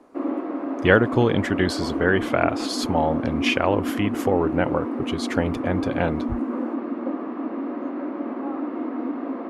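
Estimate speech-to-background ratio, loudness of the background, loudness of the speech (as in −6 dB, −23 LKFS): 4.5 dB, −28.0 LKFS, −23.5 LKFS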